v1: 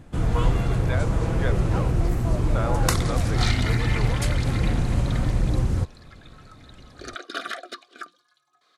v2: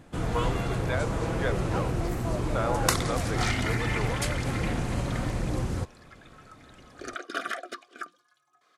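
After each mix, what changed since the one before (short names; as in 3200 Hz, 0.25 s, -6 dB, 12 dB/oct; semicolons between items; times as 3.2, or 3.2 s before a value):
first sound: add low shelf 150 Hz -11 dB; second sound: add bell 4000 Hz -10 dB 0.45 oct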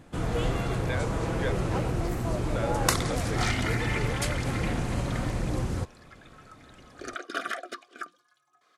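speech: add Butterworth band-stop 930 Hz, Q 0.95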